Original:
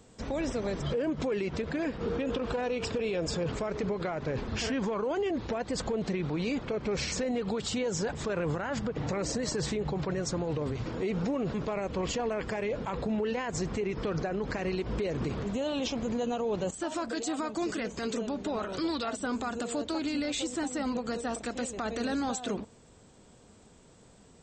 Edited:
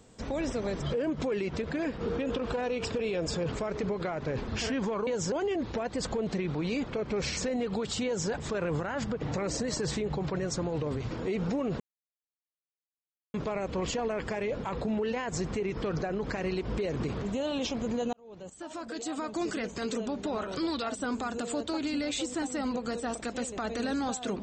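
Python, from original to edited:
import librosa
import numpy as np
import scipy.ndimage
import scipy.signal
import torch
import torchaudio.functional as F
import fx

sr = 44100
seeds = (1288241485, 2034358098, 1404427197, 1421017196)

y = fx.edit(x, sr, fx.duplicate(start_s=7.8, length_s=0.25, to_s=5.07),
    fx.insert_silence(at_s=11.55, length_s=1.54),
    fx.fade_in_span(start_s=16.34, length_s=1.31), tone=tone)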